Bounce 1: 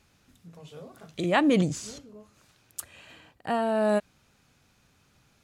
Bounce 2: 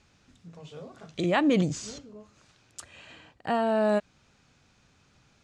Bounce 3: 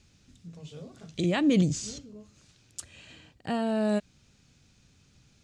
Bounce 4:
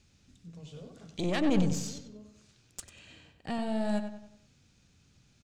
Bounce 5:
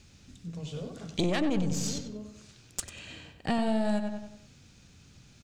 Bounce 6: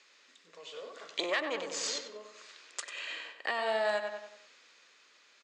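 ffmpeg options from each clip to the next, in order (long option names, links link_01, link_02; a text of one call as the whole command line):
ffmpeg -i in.wav -filter_complex "[0:a]asplit=2[link_01][link_02];[link_02]alimiter=limit=-19.5dB:level=0:latency=1:release=234,volume=-0.5dB[link_03];[link_01][link_03]amix=inputs=2:normalize=0,lowpass=frequency=7700:width=0.5412,lowpass=frequency=7700:width=1.3066,volume=-4.5dB" out.wav
ffmpeg -i in.wav -af "equalizer=frequency=1000:width=0.47:gain=-12.5,volume=4.5dB" out.wav
ffmpeg -i in.wav -filter_complex "[0:a]aeval=exprs='(tanh(12.6*val(0)+0.75)-tanh(0.75))/12.6':channel_layout=same,asplit=2[link_01][link_02];[link_02]adelay=95,lowpass=frequency=3500:poles=1,volume=-8dB,asplit=2[link_03][link_04];[link_04]adelay=95,lowpass=frequency=3500:poles=1,volume=0.43,asplit=2[link_05][link_06];[link_06]adelay=95,lowpass=frequency=3500:poles=1,volume=0.43,asplit=2[link_07][link_08];[link_08]adelay=95,lowpass=frequency=3500:poles=1,volume=0.43,asplit=2[link_09][link_10];[link_10]adelay=95,lowpass=frequency=3500:poles=1,volume=0.43[link_11];[link_03][link_05][link_07][link_09][link_11]amix=inputs=5:normalize=0[link_12];[link_01][link_12]amix=inputs=2:normalize=0,volume=1dB" out.wav
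ffmpeg -i in.wav -af "acompressor=threshold=-32dB:ratio=8,volume=8.5dB" out.wav
ffmpeg -i in.wav -af "highpass=frequency=480:width=0.5412,highpass=frequency=480:width=1.3066,equalizer=frequency=760:width_type=q:width=4:gain=-7,equalizer=frequency=1100:width_type=q:width=4:gain=6,equalizer=frequency=1900:width_type=q:width=4:gain=7,equalizer=frequency=5800:width_type=q:width=4:gain=-6,lowpass=frequency=6800:width=0.5412,lowpass=frequency=6800:width=1.3066,dynaudnorm=framelen=230:gausssize=11:maxgain=5dB,alimiter=limit=-19dB:level=0:latency=1:release=246" out.wav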